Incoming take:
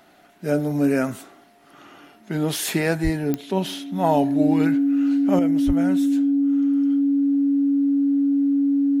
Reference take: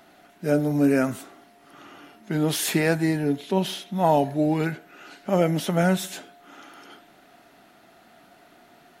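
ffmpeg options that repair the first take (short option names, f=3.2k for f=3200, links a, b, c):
-filter_complex "[0:a]adeclick=t=4,bandreject=f=280:w=30,asplit=3[a][b][c];[a]afade=t=out:st=3.03:d=0.02[d];[b]highpass=f=140:w=0.5412,highpass=f=140:w=1.3066,afade=t=in:st=3.03:d=0.02,afade=t=out:st=3.15:d=0.02[e];[c]afade=t=in:st=3.15:d=0.02[f];[d][e][f]amix=inputs=3:normalize=0,asplit=3[g][h][i];[g]afade=t=out:st=5.66:d=0.02[j];[h]highpass=f=140:w=0.5412,highpass=f=140:w=1.3066,afade=t=in:st=5.66:d=0.02,afade=t=out:st=5.78:d=0.02[k];[i]afade=t=in:st=5.78:d=0.02[l];[j][k][l]amix=inputs=3:normalize=0,asetnsamples=n=441:p=0,asendcmd='5.39 volume volume 8.5dB',volume=0dB"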